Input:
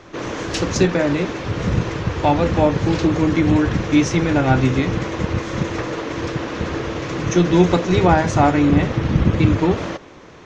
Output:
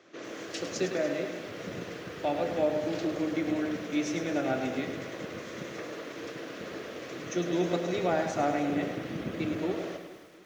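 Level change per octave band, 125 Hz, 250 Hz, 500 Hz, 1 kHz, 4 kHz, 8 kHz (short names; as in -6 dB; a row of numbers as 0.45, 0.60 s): -22.5 dB, -14.5 dB, -10.5 dB, -14.0 dB, -12.0 dB, n/a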